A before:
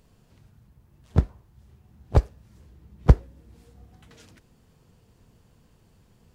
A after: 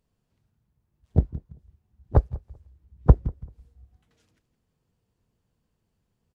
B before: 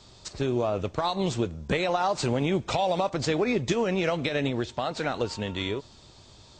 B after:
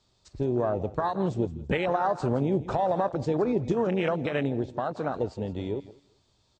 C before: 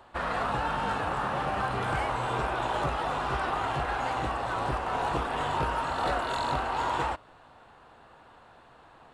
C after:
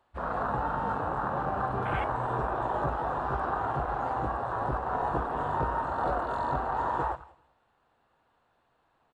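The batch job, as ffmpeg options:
-filter_complex "[0:a]asplit=2[link_01][link_02];[link_02]aecho=0:1:166|332|498:0.188|0.049|0.0127[link_03];[link_01][link_03]amix=inputs=2:normalize=0,afwtdn=0.0316,asplit=2[link_04][link_05];[link_05]adelay=194,lowpass=frequency=1400:poles=1,volume=-24dB,asplit=2[link_06][link_07];[link_07]adelay=194,lowpass=frequency=1400:poles=1,volume=0.24[link_08];[link_06][link_08]amix=inputs=2:normalize=0[link_09];[link_04][link_09]amix=inputs=2:normalize=0"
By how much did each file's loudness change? 0.0, −0.5, −1.0 LU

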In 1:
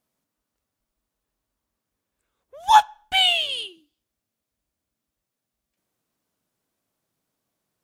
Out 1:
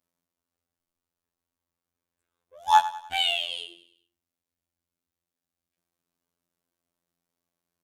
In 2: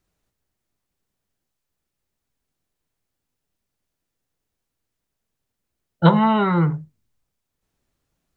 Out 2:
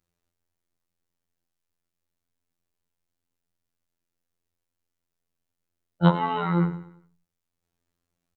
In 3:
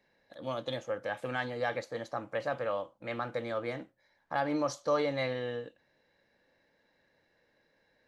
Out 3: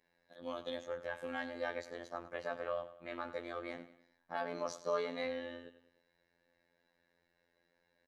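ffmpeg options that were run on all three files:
-af "aecho=1:1:99|198|297|396:0.188|0.0829|0.0365|0.016,afftfilt=real='hypot(re,im)*cos(PI*b)':imag='0':win_size=2048:overlap=0.75,volume=-3dB"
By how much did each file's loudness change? −5.5, −6.0, −6.5 LU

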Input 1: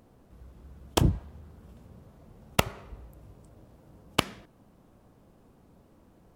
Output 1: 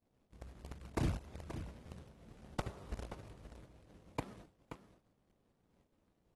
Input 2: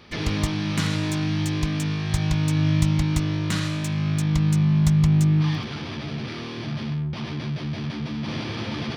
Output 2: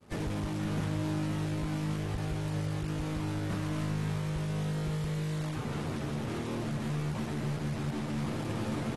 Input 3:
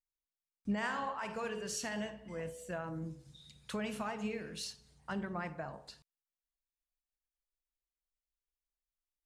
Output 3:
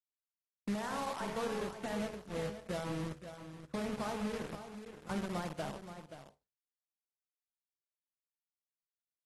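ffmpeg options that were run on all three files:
-filter_complex "[0:a]lowpass=1000,agate=range=-33dB:threshold=-47dB:ratio=3:detection=peak,acompressor=threshold=-38dB:ratio=2,asplit=2[link_01][link_02];[link_02]acrusher=bits=6:mix=0:aa=0.000001,volume=-4dB[link_03];[link_01][link_03]amix=inputs=2:normalize=0,aeval=exprs='0.237*(cos(1*acos(clip(val(0)/0.237,-1,1)))-cos(1*PI/2))+0.00473*(cos(4*acos(clip(val(0)/0.237,-1,1)))-cos(4*PI/2))+0.00596*(cos(6*acos(clip(val(0)/0.237,-1,1)))-cos(6*PI/2))+0.0133*(cos(8*acos(clip(val(0)/0.237,-1,1)))-cos(8*PI/2))':channel_layout=same,acrusher=bits=2:mode=log:mix=0:aa=0.000001,asoftclip=type=hard:threshold=-26.5dB,aecho=1:1:528:0.299,volume=-2dB" -ar 32000 -c:a aac -b:a 32k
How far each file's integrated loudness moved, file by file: −16.0, −10.0, 0.0 LU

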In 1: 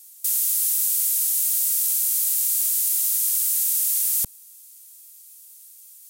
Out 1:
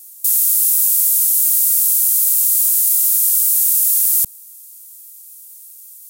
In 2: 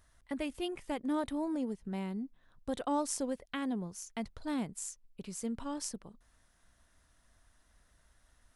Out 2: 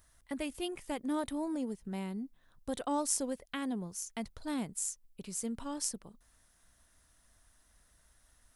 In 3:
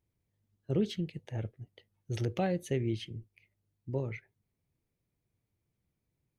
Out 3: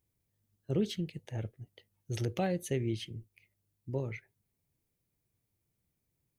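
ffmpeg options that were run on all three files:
-af "highshelf=frequency=6700:gain=10.5,volume=-1dB"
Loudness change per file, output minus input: +7.5, +0.5, −1.0 LU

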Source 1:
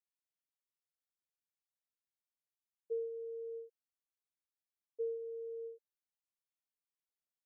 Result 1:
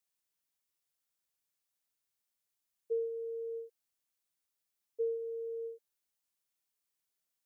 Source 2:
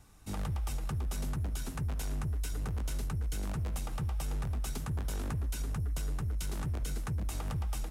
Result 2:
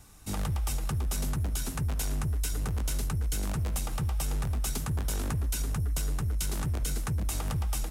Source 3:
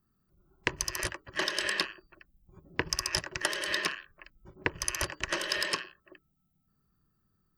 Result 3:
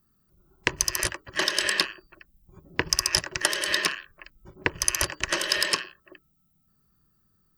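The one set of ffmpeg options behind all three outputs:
-af "highshelf=frequency=4300:gain=6.5,volume=4dB"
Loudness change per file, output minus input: +4.0, +4.5, +6.5 LU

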